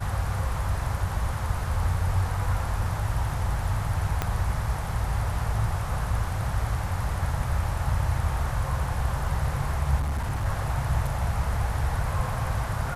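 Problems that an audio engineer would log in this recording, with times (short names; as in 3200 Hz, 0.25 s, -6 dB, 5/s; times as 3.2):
4.22 pop -11 dBFS
9.99–10.46 clipped -24 dBFS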